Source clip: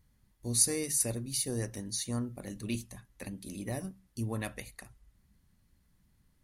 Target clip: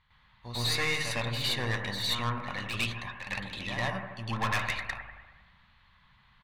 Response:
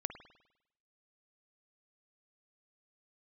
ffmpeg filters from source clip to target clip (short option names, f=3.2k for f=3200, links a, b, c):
-filter_complex "[0:a]bass=f=250:g=-8,treble=f=4k:g=-4,acontrast=35,firequalizer=gain_entry='entry(140,0);entry(310,-15);entry(1000,12);entry(1400,8);entry(3700,11);entry(5400,-10);entry(9500,-23)':delay=0.05:min_phase=1,aeval=exprs='(tanh(31.6*val(0)+0.4)-tanh(0.4))/31.6':c=same,asplit=2[a][b];[1:a]atrim=start_sample=2205,asetrate=28665,aresample=44100,adelay=106[c];[b][c]afir=irnorm=-1:irlink=0,volume=6.5dB[d];[a][d]amix=inputs=2:normalize=0,volume=-2dB"